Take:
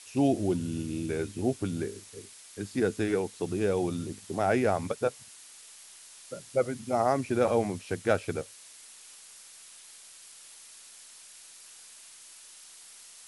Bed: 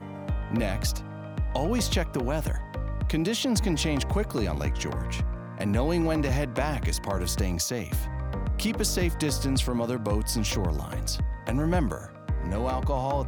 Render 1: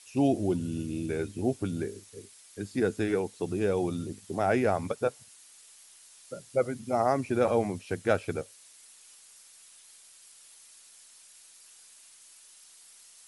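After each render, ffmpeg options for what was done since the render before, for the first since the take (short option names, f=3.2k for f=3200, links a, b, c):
-af "afftdn=nr=6:nf=-51"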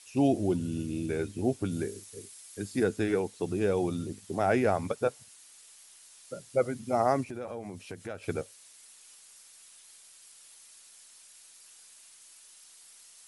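-filter_complex "[0:a]asettb=1/sr,asplit=3[a][b][c];[a]atrim=end=1.714[d];[b]atrim=start=1.71:end=2.84,asetpts=PTS-STARTPTS,afade=t=in:d=0.004:c=qsin,afade=t=out:st=1.126:d=0.004:c=qsin,highshelf=f=6.8k:g=7.5[e];[c]atrim=start=2.836[f];[d][e]acrossfade=d=0.004:c1=hsin:c2=qsin[g];[g][f]acrossfade=d=0.004:c1=qsin:c2=hsin,asplit=3[h][i][j];[h]afade=t=out:st=7.23:d=0.02[k];[i]acompressor=threshold=-39dB:ratio=3:attack=3.2:release=140:knee=1:detection=peak,afade=t=in:st=7.23:d=0.02,afade=t=out:st=8.22:d=0.02[l];[j]afade=t=in:st=8.22:d=0.02[m];[k][l][m]amix=inputs=3:normalize=0"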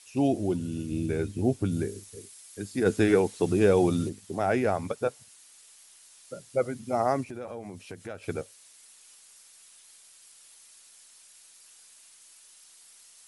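-filter_complex "[0:a]asettb=1/sr,asplit=3[a][b][c];[a]atrim=end=0.914[d];[b]atrim=start=0.91:end=2.16,asetpts=PTS-STARTPTS,afade=t=in:d=0.004:c=qsin,afade=t=out:st=1.246:d=0.004:c=qsin,lowshelf=f=220:g=7.5[e];[c]atrim=start=2.156[f];[d][e]acrossfade=d=0.004:c1=hsin:c2=qsin[g];[g][f]acrossfade=d=0.004:c1=qsin:c2=hsin,asplit=3[h][i][j];[h]afade=t=out:st=2.85:d=0.02[k];[i]acontrast=71,afade=t=in:st=2.85:d=0.02,afade=t=out:st=4.08:d=0.02[l];[j]afade=t=in:st=4.08:d=0.02[m];[k][l][m]amix=inputs=3:normalize=0"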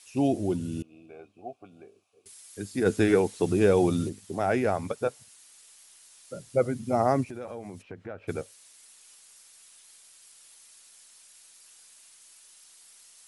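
-filter_complex "[0:a]asettb=1/sr,asplit=3[a][b][c];[a]atrim=end=0.824[d];[b]atrim=start=0.82:end=2.26,asetpts=PTS-STARTPTS,afade=t=in:d=0.004:c=qsin,afade=t=out:st=1.436:d=0.004:c=qsin,asplit=3[e][f][g];[e]bandpass=f=730:t=q:w=8,volume=0dB[h];[f]bandpass=f=1.09k:t=q:w=8,volume=-6dB[i];[g]bandpass=f=2.44k:t=q:w=8,volume=-9dB[j];[h][i][j]amix=inputs=3:normalize=0[k];[c]atrim=start=2.256[l];[d][k]acrossfade=d=0.004:c1=hsin:c2=qsin[m];[m][l]acrossfade=d=0.004:c1=qsin:c2=hsin,asettb=1/sr,asplit=3[n][o][p];[n]atrim=end=6.344[q];[o]atrim=start=6.34:end=7.25,asetpts=PTS-STARTPTS,afade=t=in:d=0.004:c=qsin,afade=t=out:st=0.906:d=0.004:c=qsin,lowshelf=f=360:g=7[r];[p]atrim=start=7.246[s];[q][r]acrossfade=d=0.004:c1=hsin:c2=qsin[t];[t][s]acrossfade=d=0.004:c1=qsin:c2=hsin,asplit=3[u][v][w];[u]afade=t=out:st=7.81:d=0.02[x];[v]lowpass=1.9k,afade=t=in:st=7.81:d=0.02,afade=t=out:st=8.27:d=0.02[y];[w]afade=t=in:st=8.27:d=0.02[z];[x][y][z]amix=inputs=3:normalize=0"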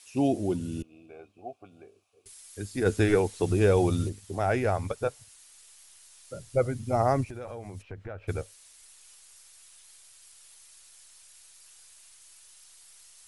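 -af "asubboost=boost=8.5:cutoff=70"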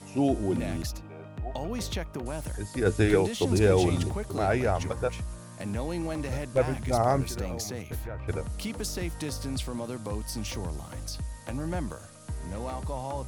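-filter_complex "[1:a]volume=-7dB[a];[0:a][a]amix=inputs=2:normalize=0"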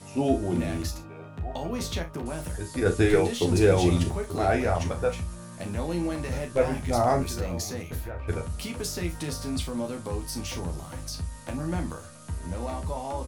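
-filter_complex "[0:a]asplit=2[a][b];[b]adelay=12,volume=-5dB[c];[a][c]amix=inputs=2:normalize=0,aecho=1:1:34|59:0.355|0.15"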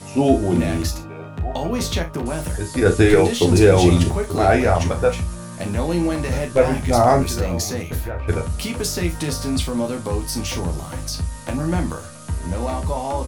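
-af "volume=8.5dB,alimiter=limit=-3dB:level=0:latency=1"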